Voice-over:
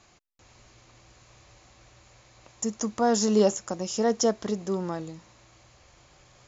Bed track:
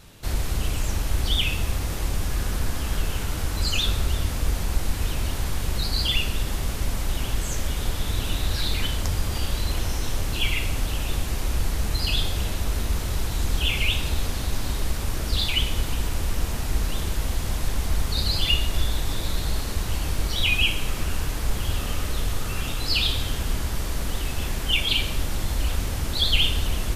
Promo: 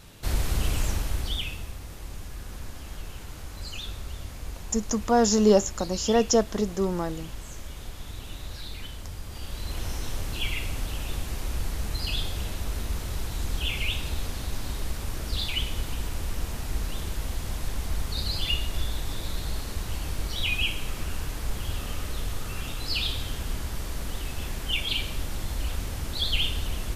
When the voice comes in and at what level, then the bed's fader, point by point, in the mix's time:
2.10 s, +2.5 dB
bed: 0:00.83 −0.5 dB
0:01.75 −13 dB
0:09.25 −13 dB
0:09.87 −5.5 dB

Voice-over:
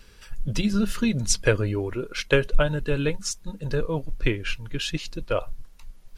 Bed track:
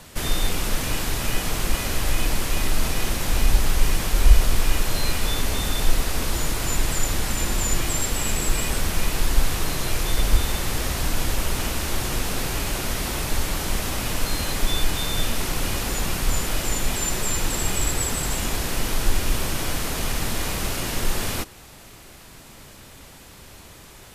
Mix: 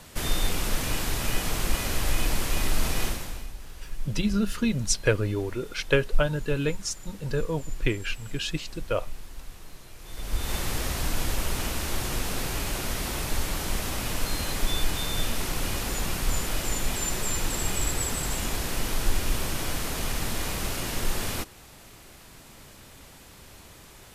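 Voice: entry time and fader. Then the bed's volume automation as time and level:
3.60 s, −2.0 dB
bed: 0:03.05 −3 dB
0:03.54 −22.5 dB
0:09.97 −22.5 dB
0:10.54 −4 dB

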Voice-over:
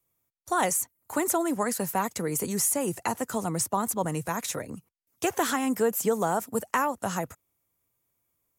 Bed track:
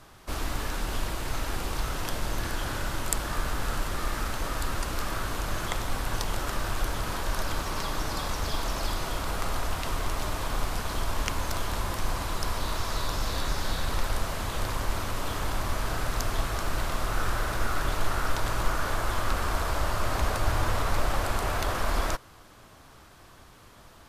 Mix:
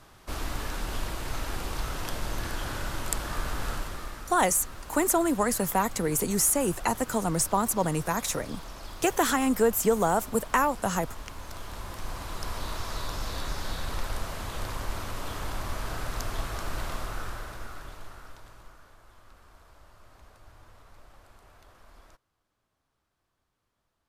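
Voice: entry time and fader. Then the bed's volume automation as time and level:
3.80 s, +2.0 dB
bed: 0:03.70 −2 dB
0:04.28 −12 dB
0:11.27 −12 dB
0:12.58 −4 dB
0:16.92 −4 dB
0:18.96 −27.5 dB

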